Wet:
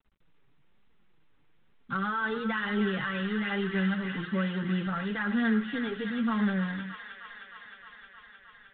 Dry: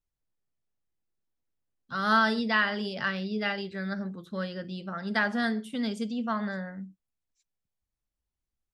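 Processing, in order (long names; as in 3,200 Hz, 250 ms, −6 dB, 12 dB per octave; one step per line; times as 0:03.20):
mu-law and A-law mismatch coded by mu
0:04.27–0:04.87: high-pass filter 41 Hz 24 dB per octave
parametric band 640 Hz −13 dB 0.33 octaves
in parallel at −2 dB: downward compressor 6 to 1, threshold −35 dBFS, peak gain reduction 15.5 dB
on the sum: brickwall limiter −21.5 dBFS, peak gain reduction 10 dB
flanger 1.1 Hz, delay 4.3 ms, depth 3.1 ms, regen −2%
high-frequency loss of the air 270 metres
on a send: delay with a high-pass on its return 310 ms, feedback 79%, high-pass 1,700 Hz, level −3.5 dB
on the sum: level +3.5 dB
G.726 32 kbit/s 8,000 Hz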